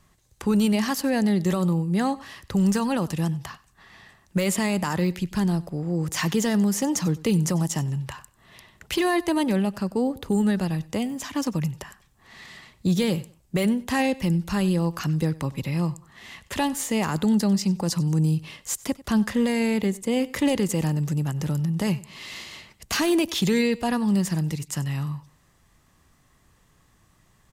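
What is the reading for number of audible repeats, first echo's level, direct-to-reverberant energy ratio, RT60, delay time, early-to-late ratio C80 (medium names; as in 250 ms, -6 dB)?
2, -20.5 dB, no reverb, no reverb, 95 ms, no reverb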